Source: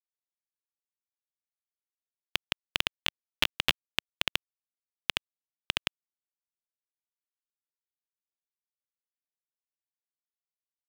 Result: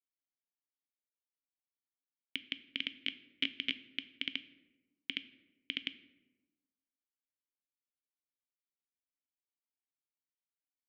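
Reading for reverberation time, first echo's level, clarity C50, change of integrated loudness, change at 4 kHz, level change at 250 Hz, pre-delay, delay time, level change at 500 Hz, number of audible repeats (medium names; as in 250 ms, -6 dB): 1.1 s, no echo, 15.5 dB, -8.0 dB, -7.0 dB, -1.0 dB, 3 ms, no echo, -16.0 dB, no echo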